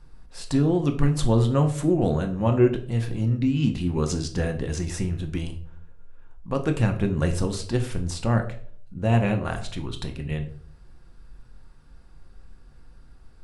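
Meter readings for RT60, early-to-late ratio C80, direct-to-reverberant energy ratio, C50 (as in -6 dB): 0.50 s, 16.0 dB, 5.0 dB, 12.0 dB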